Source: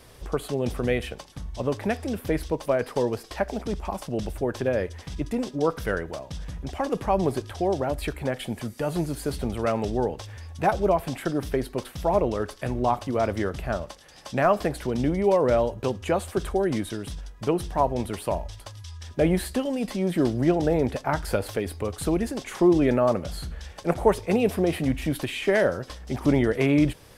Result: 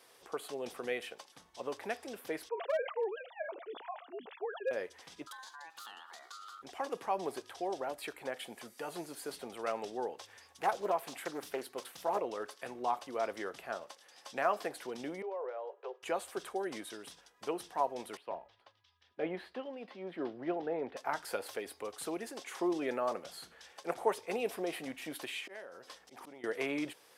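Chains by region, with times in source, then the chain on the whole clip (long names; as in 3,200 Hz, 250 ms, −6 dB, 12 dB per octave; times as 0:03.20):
0:02.49–0:04.71: three sine waves on the formant tracks + hard clipping −16 dBFS + level that may fall only so fast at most 110 dB per second
0:05.27–0:06.62: downward compressor 5 to 1, threshold −35 dBFS + ring modulation 1,300 Hz + high shelf with overshoot 2,900 Hz +6.5 dB, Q 3
0:10.31–0:12.19: high-shelf EQ 6,400 Hz +6 dB + mains-hum notches 60/120 Hz + highs frequency-modulated by the lows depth 0.36 ms
0:15.22–0:16.03: Butterworth high-pass 380 Hz 96 dB per octave + downward compressor 4 to 1, threshold −23 dBFS + head-to-tape spacing loss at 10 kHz 40 dB
0:18.17–0:20.97: high-frequency loss of the air 340 metres + multiband upward and downward expander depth 40%
0:25.40–0:26.44: volume swells 112 ms + downward compressor 16 to 1, threshold −32 dBFS
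whole clip: high-pass filter 470 Hz 12 dB per octave; notch filter 600 Hz, Q 12; level −8 dB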